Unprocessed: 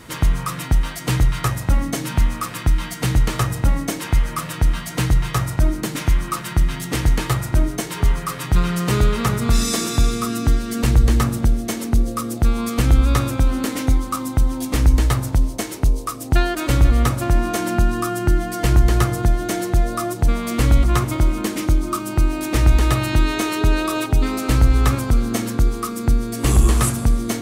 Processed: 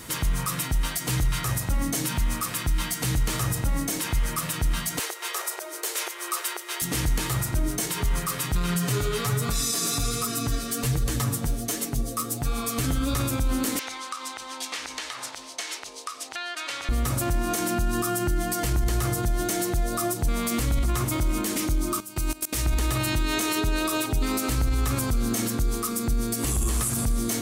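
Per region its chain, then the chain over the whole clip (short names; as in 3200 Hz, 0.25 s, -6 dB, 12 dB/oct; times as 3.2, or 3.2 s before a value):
4.99–6.82 compressor 3:1, threshold -18 dBFS + brick-wall FIR high-pass 340 Hz
8.74–13.14 comb 7 ms, depth 68% + flange 1.3 Hz, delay 4.7 ms, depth 8.2 ms, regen +34%
13.79–16.89 BPF 790–3300 Hz + high shelf 2300 Hz +11 dB + compressor 4:1, threshold -30 dBFS
22–22.66 high shelf 2800 Hz +8.5 dB + level quantiser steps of 22 dB
whole clip: high shelf 5000 Hz +12 dB; limiter -14.5 dBFS; gain -2 dB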